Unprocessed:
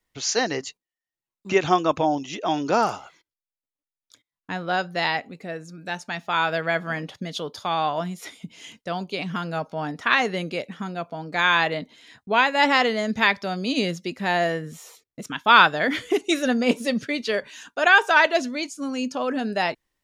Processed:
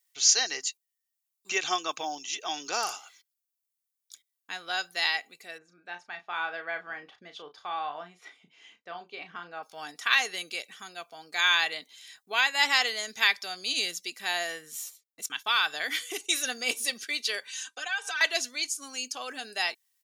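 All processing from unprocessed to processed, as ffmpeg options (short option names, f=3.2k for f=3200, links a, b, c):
-filter_complex "[0:a]asettb=1/sr,asplit=3[a][b][c];[a]atrim=end=5.584[d];[b]atrim=start=5.58:end=9.63,asetpts=PTS-STARTPTS,afade=t=in:d=0.004:c=qsin,afade=t=out:st=4.046:d=0.004:c=qsin,lowpass=1.6k,asplit=2[e][f];[f]adelay=34,volume=-8.5dB[g];[e][g]amix=inputs=2:normalize=0,atrim=end_sample=178605[h];[c]atrim=start=9.626[i];[d][h]acrossfade=d=0.004:c1=hsin:c2=qsin[j];[j][i]acrossfade=d=0.004:c1=qsin:c2=hsin,asettb=1/sr,asplit=3[k][l][m];[k]atrim=end=14.424[n];[l]atrim=start=14.42:end=16.34,asetpts=PTS-STARTPTS,afade=t=in:d=0.004:c=qsin,afade=t=out:st=1.916:d=0.004:c=qsin,agate=range=-11dB:threshold=-46dB:ratio=16:release=100:detection=peak,acompressor=threshold=-19dB:ratio=2:attack=3.2:release=140:knee=1:detection=peak[o];[m]atrim=start=16.336[p];[n][o]acrossfade=d=0.004:c1=hsin:c2=qsin[q];[q][p]acrossfade=d=0.004:c1=qsin:c2=hsin,asettb=1/sr,asplit=3[r][s][t];[r]atrim=end=17.474[u];[s]atrim=start=17.47:end=18.21,asetpts=PTS-STARTPTS,afade=t=in:d=0.004:c=qsin,afade=t=out:st=0.736:d=0.004:c=qsin,lowpass=f=10k:w=0.5412,lowpass=f=10k:w=1.3066,acompressor=threshold=-29dB:ratio=4:attack=3.2:release=140:knee=1:detection=peak,aecho=1:1:3.9:0.89,atrim=end_sample=32634[v];[t]atrim=start=18.206[w];[u][v]acrossfade=d=0.004:c1=hsin:c2=qsin[x];[x][w]acrossfade=d=0.004:c1=qsin:c2=hsin,aderivative,aecho=1:1:2.6:0.35,volume=7dB"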